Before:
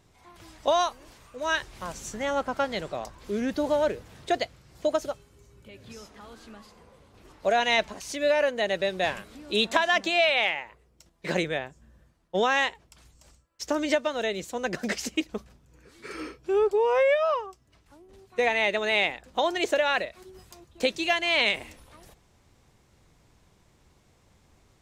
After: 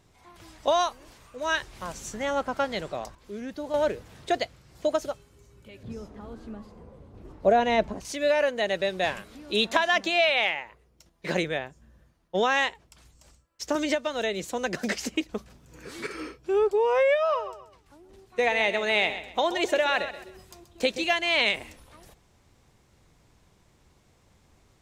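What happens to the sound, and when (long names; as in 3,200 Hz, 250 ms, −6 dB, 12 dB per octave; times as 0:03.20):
0:03.15–0:03.74: clip gain −8 dB
0:05.83–0:08.05: tilt shelving filter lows +9.5 dB
0:09.30–0:12.54: notch filter 7,800 Hz
0:13.75–0:16.07: multiband upward and downward compressor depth 70%
0:17.19–0:21.05: repeating echo 130 ms, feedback 31%, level −12 dB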